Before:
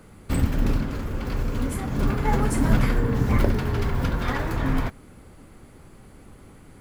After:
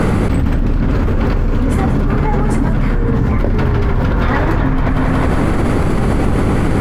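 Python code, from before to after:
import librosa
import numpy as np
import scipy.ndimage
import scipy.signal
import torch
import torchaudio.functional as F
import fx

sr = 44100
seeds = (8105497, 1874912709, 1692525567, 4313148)

p1 = fx.lowpass(x, sr, hz=1900.0, slope=6)
p2 = p1 + fx.echo_split(p1, sr, split_hz=390.0, low_ms=118, high_ms=185, feedback_pct=52, wet_db=-14.0, dry=0)
y = fx.env_flatten(p2, sr, amount_pct=100)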